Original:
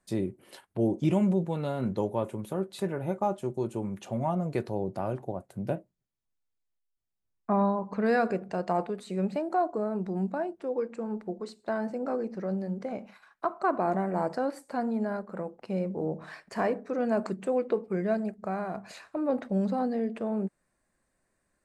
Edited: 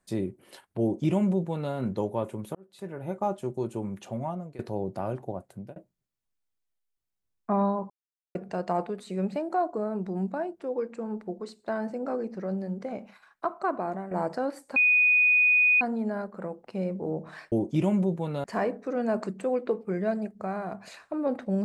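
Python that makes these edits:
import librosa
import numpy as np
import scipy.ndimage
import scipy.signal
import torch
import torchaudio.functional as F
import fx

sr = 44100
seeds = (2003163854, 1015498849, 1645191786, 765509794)

y = fx.edit(x, sr, fx.duplicate(start_s=0.81, length_s=0.92, to_s=16.47),
    fx.fade_in_span(start_s=2.55, length_s=0.73),
    fx.fade_out_to(start_s=3.83, length_s=0.76, curve='qsin', floor_db=-19.5),
    fx.fade_out_span(start_s=5.48, length_s=0.28),
    fx.silence(start_s=7.9, length_s=0.45),
    fx.fade_out_to(start_s=13.53, length_s=0.58, floor_db=-9.5),
    fx.insert_tone(at_s=14.76, length_s=1.05, hz=2480.0, db=-17.5), tone=tone)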